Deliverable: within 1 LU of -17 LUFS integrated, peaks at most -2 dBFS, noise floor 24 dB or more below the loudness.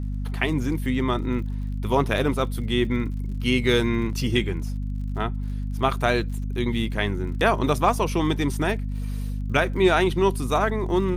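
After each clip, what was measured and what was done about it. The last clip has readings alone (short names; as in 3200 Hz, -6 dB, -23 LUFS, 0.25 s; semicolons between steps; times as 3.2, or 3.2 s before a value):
ticks 48/s; hum 50 Hz; harmonics up to 250 Hz; hum level -25 dBFS; loudness -24.5 LUFS; peak -7.0 dBFS; loudness target -17.0 LUFS
-> de-click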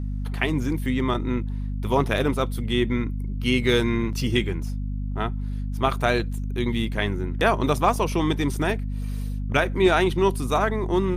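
ticks 0/s; hum 50 Hz; harmonics up to 250 Hz; hum level -25 dBFS
-> notches 50/100/150/200/250 Hz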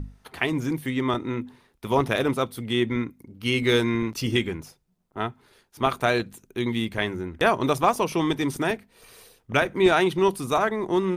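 hum none; loudness -25.0 LUFS; peak -7.5 dBFS; loudness target -17.0 LUFS
-> gain +8 dB; limiter -2 dBFS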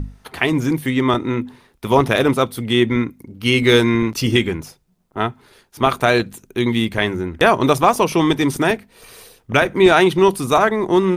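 loudness -17.5 LUFS; peak -2.0 dBFS; noise floor -59 dBFS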